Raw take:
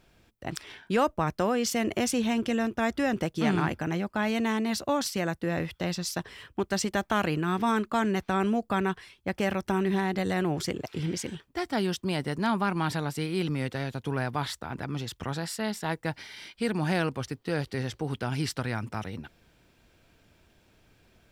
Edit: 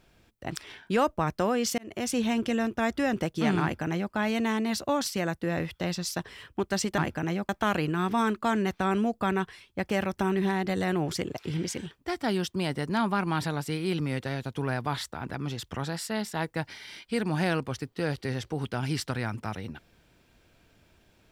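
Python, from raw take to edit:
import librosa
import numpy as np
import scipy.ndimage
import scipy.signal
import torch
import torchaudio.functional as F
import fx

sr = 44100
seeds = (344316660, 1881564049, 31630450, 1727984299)

y = fx.edit(x, sr, fx.fade_in_span(start_s=1.78, length_s=0.4),
    fx.duplicate(start_s=3.62, length_s=0.51, to_s=6.98), tone=tone)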